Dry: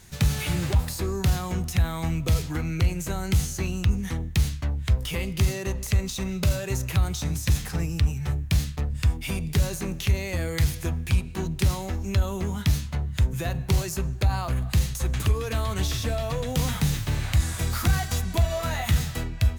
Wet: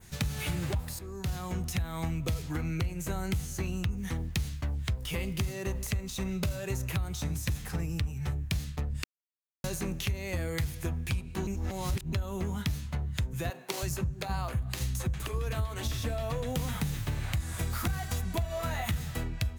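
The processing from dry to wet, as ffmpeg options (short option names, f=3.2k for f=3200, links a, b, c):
-filter_complex "[0:a]asettb=1/sr,asplit=3[a][b][c];[a]atrim=end=3.974[d];[b]atrim=start=3.97:end=6.05,asetpts=PTS-STARTPTS,afade=t=in:d=0.004:c=qsin,afade=t=out:st=2.076:d=0.004:c=qsin,acrusher=bits=8:mix=0:aa=0.5[e];[c]atrim=start=6.046[f];[d][e]acrossfade=d=0.004:c1=hsin:c2=qsin[g];[g][f]acrossfade=d=0.004:c1=qsin:c2=hsin,asettb=1/sr,asplit=3[h][i][j];[h]atrim=end=13.504[k];[i]atrim=start=13.5:end=15.92,asetpts=PTS-STARTPTS,afade=t=in:d=0.004:c=qsin,afade=t=out:st=2.416:d=0.004:c=qsin,acrossover=split=280[l][m];[l]adelay=320[n];[n][m]amix=inputs=2:normalize=0,atrim=end_sample=106722[o];[j]atrim=start=15.916[p];[k][o]acrossfade=d=0.004:c1=hsin:c2=qsin[q];[q][p]acrossfade=d=0.004:c1=qsin:c2=hsin,asplit=6[r][s][t][u][v][w];[r]atrim=end=0.99,asetpts=PTS-STARTPTS,afade=t=out:st=0.986:d=0.004:c=hsin:silence=0.158489[x];[s]atrim=start=0.99:end=9.04,asetpts=PTS-STARTPTS,afade=t=in:d=0.79:silence=0.158489,afade=t=out:st=8.046:d=0.004:c=hsin[y];[t]atrim=start=9.04:end=9.64,asetpts=PTS-STARTPTS,volume=0[z];[u]atrim=start=9.64:end=11.472,asetpts=PTS-STARTPTS,afade=t=in:d=0.004:c=hsin[aa];[v]atrim=start=11.468:end=12.132,asetpts=PTS-STARTPTS,areverse[ab];[w]atrim=start=12.128[ac];[x][y][z][aa]concat=n=4:v=0:a=1[ad];[ad][ab]acrossfade=d=0.004:c1=hsin:c2=hsin[ae];[ae][ac]acrossfade=d=0.004:c1=hsin:c2=hsin,adynamicequalizer=threshold=0.00398:dfrequency=5000:dqfactor=0.83:tfrequency=5000:tqfactor=0.83:attack=5:release=100:ratio=0.375:range=2:mode=cutabove:tftype=bell,acompressor=threshold=-26dB:ratio=6,volume=-2dB"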